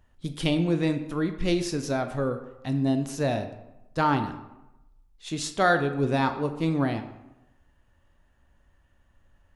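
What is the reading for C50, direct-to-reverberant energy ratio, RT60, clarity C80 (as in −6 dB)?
10.5 dB, 7.5 dB, 0.95 s, 12.5 dB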